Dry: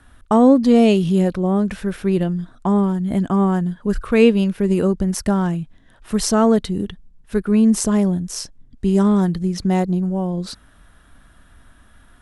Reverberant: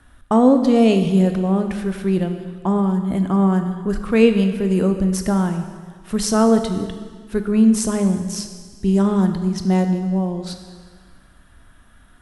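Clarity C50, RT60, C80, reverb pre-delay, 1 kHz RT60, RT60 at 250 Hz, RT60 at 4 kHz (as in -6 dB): 8.0 dB, 1.6 s, 9.5 dB, 15 ms, 1.7 s, 1.5 s, 1.6 s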